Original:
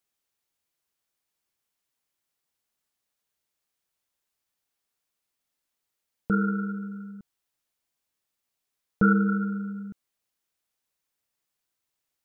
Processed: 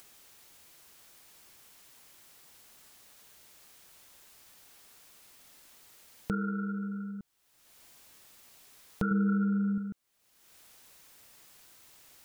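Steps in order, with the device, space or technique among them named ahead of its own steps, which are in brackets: upward and downward compression (upward compressor, threshold -38 dBFS; compression 3:1, threshold -33 dBFS, peak gain reduction 13 dB); 9.11–9.78 s: bass shelf 270 Hz +8.5 dB; trim +1 dB

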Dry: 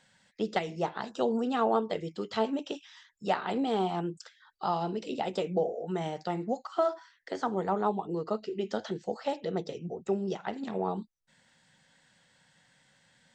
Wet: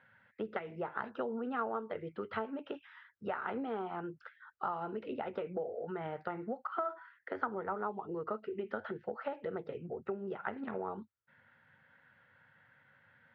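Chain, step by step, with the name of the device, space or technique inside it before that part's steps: bass amplifier (compression 5:1, threshold -33 dBFS, peak gain reduction 11 dB; cabinet simulation 78–2300 Hz, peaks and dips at 98 Hz +8 dB, 180 Hz -9 dB, 310 Hz -5 dB, 720 Hz -4 dB, 1.4 kHz +9 dB)

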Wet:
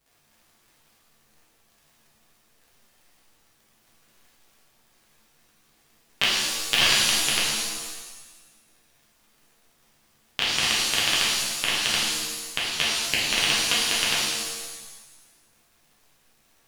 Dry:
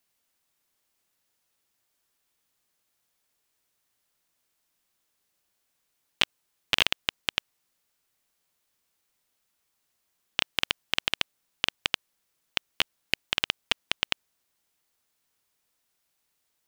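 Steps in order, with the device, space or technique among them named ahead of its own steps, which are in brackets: vinyl LP (wow and flutter; crackle 63 per s -47 dBFS; pink noise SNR 40 dB); 6.23–6.76 s: treble shelf 5.5 kHz +9.5 dB; pitch-shifted reverb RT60 1.2 s, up +7 st, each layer -2 dB, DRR -7 dB; trim -2.5 dB

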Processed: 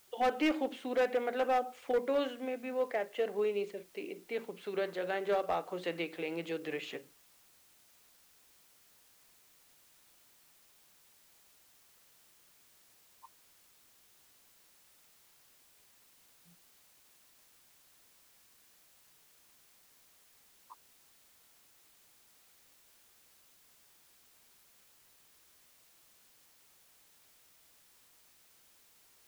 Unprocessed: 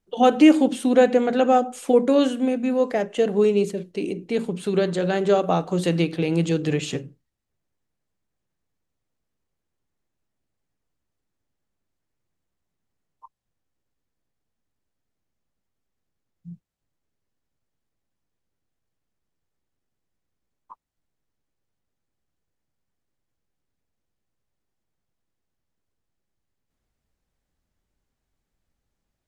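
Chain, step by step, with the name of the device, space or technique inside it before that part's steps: drive-through speaker (band-pass 470–3200 Hz; peaking EQ 2.1 kHz +5 dB 0.36 oct; hard clipper -15.5 dBFS, distortion -14 dB; white noise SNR 24 dB); trim -9 dB

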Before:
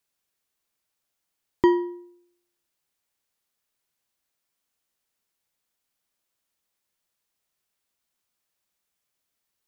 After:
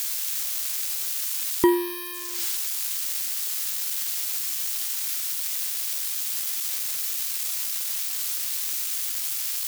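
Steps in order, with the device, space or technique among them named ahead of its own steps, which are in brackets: budget class-D amplifier (dead-time distortion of 0.061 ms; zero-crossing glitches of -13.5 dBFS)

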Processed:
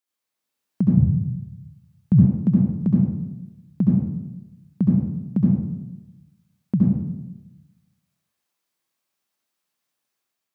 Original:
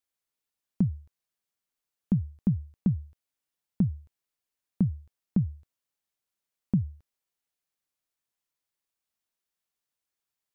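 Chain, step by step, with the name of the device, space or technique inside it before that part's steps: far laptop microphone (reverberation RT60 0.95 s, pre-delay 64 ms, DRR -3.5 dB; high-pass 140 Hz 12 dB/octave; level rider gain up to 4.5 dB); 0.97–2.25 s: resonant low shelf 170 Hz +11.5 dB, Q 1.5

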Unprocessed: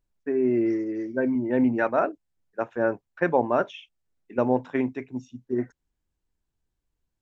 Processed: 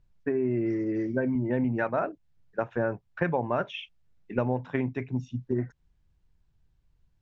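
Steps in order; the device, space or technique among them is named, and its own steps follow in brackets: jukebox (low-pass 5 kHz 12 dB/octave; resonant low shelf 200 Hz +7.5 dB, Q 1.5; compression 4:1, threshold -31 dBFS, peak gain reduction 12.5 dB); 3.24–4.60 s: dynamic bell 2.3 kHz, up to +4 dB, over -53 dBFS, Q 1.2; trim +5.5 dB

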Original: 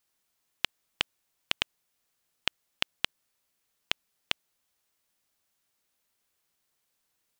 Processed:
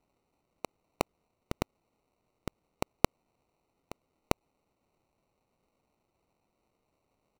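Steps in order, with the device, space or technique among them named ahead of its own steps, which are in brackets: crushed at another speed (playback speed 0.8×; sample-and-hold 33×; playback speed 1.25×)

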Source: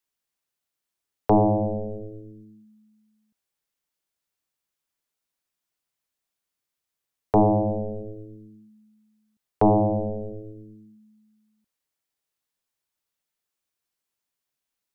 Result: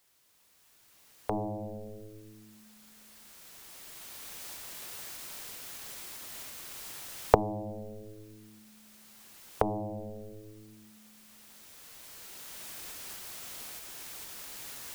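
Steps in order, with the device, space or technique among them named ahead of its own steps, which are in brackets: cheap recorder with automatic gain (white noise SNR 25 dB; recorder AGC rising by 9.1 dB/s); trim -15.5 dB

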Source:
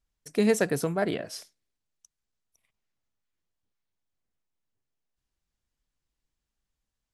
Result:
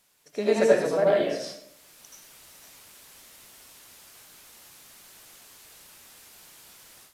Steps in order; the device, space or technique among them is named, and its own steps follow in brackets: filmed off a television (band-pass 240–6100 Hz; peaking EQ 600 Hz +9.5 dB 0.35 oct; reverberation RT60 0.55 s, pre-delay 75 ms, DRR -5.5 dB; white noise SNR 33 dB; level rider gain up to 15.5 dB; trim -6 dB; AAC 64 kbps 32 kHz)

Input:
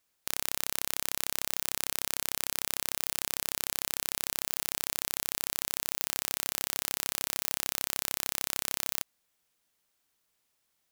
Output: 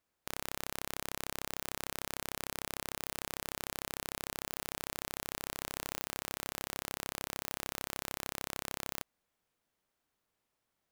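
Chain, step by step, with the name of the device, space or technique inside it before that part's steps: through cloth (treble shelf 2.2 kHz -12 dB); trim +1 dB

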